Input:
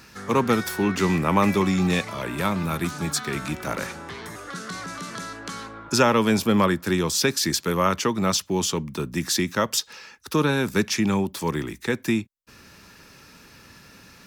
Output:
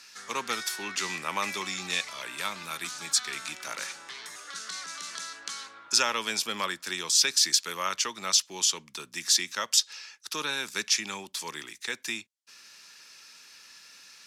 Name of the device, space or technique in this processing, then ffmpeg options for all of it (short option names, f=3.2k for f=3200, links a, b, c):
piezo pickup straight into a mixer: -af "lowpass=6.1k,aderivative,volume=7.5dB"